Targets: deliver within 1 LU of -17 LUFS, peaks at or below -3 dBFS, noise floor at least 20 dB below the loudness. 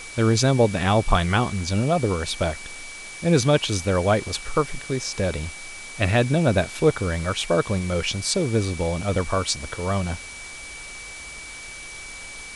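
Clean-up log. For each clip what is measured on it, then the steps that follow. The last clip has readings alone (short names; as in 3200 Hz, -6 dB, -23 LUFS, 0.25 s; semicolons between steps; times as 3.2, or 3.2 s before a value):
steady tone 2300 Hz; tone level -38 dBFS; noise floor -38 dBFS; noise floor target -43 dBFS; loudness -23.0 LUFS; peak -4.0 dBFS; loudness target -17.0 LUFS
-> notch 2300 Hz, Q 30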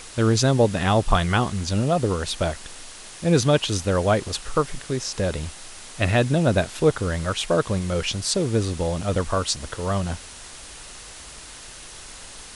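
steady tone none; noise floor -41 dBFS; noise floor target -43 dBFS
-> denoiser 6 dB, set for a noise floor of -41 dBFS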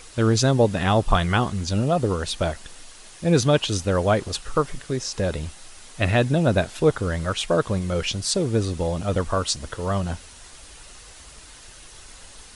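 noise floor -45 dBFS; loudness -23.0 LUFS; peak -4.0 dBFS; loudness target -17.0 LUFS
-> gain +6 dB; limiter -3 dBFS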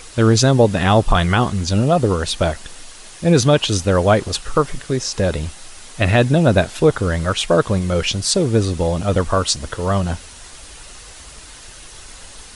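loudness -17.5 LUFS; peak -3.0 dBFS; noise floor -39 dBFS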